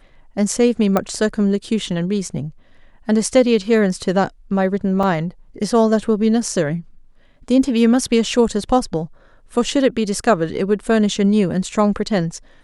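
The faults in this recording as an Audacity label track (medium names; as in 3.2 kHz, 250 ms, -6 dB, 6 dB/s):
0.970000	0.970000	pop -5 dBFS
5.030000	5.030000	dropout 2.9 ms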